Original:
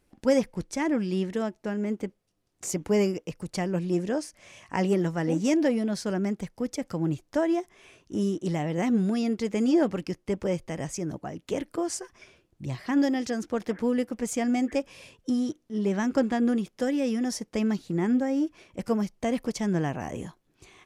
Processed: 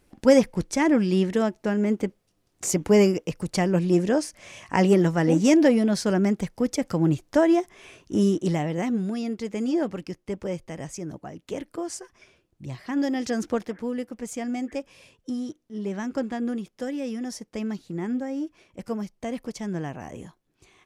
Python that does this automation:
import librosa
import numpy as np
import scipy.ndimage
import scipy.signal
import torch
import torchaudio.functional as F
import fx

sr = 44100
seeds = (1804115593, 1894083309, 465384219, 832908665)

y = fx.gain(x, sr, db=fx.line((8.37, 6.0), (8.99, -2.5), (12.96, -2.5), (13.49, 5.5), (13.73, -4.0)))